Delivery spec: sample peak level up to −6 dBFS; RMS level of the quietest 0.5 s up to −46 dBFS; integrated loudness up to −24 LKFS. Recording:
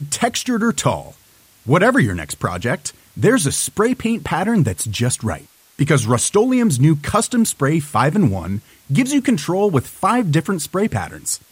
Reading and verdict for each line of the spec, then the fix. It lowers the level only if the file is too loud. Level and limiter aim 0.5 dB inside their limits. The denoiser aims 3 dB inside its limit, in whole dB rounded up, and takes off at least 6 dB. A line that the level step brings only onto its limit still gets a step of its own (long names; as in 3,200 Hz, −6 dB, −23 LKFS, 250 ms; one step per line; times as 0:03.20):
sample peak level −3.5 dBFS: out of spec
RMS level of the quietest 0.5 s −51 dBFS: in spec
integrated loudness −18.0 LKFS: out of spec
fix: level −6.5 dB